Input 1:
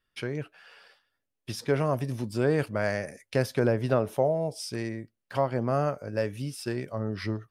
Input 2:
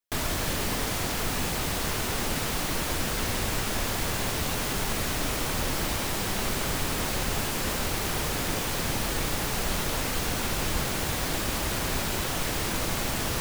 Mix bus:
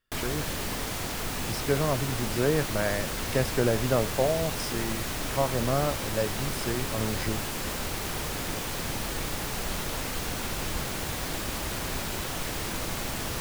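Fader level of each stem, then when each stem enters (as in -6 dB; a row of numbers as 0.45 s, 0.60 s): -0.5 dB, -3.5 dB; 0.00 s, 0.00 s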